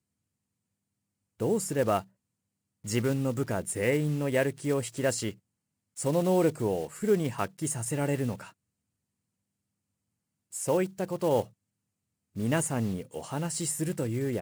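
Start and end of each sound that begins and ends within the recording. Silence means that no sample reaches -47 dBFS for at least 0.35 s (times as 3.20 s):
1.40–2.03 s
2.84–5.34 s
5.97–8.50 s
10.52–11.48 s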